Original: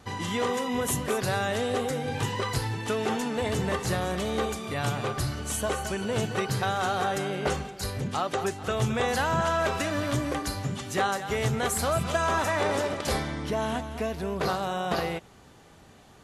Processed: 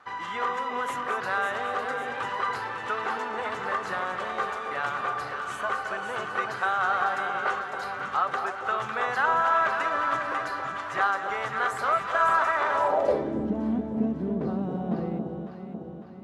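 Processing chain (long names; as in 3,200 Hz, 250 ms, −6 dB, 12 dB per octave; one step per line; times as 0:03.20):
delay that swaps between a low-pass and a high-pass 276 ms, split 930 Hz, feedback 73%, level −4 dB
band-pass filter sweep 1,300 Hz → 230 Hz, 0:12.70–0:13.47
level +7.5 dB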